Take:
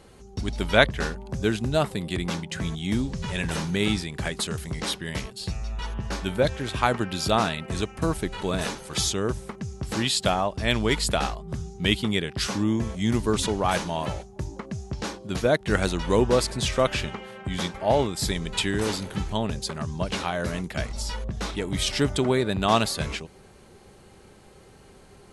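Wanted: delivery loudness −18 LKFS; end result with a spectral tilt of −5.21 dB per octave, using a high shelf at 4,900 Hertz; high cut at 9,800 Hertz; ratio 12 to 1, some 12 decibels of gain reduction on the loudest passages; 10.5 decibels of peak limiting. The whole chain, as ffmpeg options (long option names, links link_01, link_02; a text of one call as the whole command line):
ffmpeg -i in.wav -af "lowpass=9800,highshelf=frequency=4900:gain=-8.5,acompressor=threshold=-24dB:ratio=12,volume=15dB,alimiter=limit=-6.5dB:level=0:latency=1" out.wav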